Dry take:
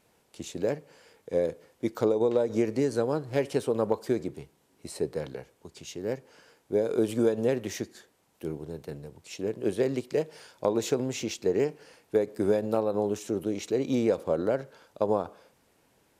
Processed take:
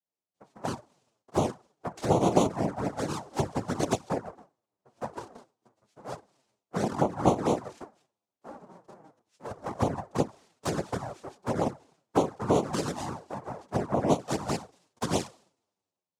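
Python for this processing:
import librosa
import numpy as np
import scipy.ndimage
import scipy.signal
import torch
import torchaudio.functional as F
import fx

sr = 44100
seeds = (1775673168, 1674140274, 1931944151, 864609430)

y = scipy.signal.sosfilt(scipy.signal.butter(2, 1500.0, 'lowpass', fs=sr, output='sos'), x)
y = fx.hum_notches(y, sr, base_hz=60, count=7)
y = fx.noise_vocoder(y, sr, seeds[0], bands=2)
y = fx.env_flanger(y, sr, rest_ms=11.4, full_db=-21.0)
y = fx.band_widen(y, sr, depth_pct=70)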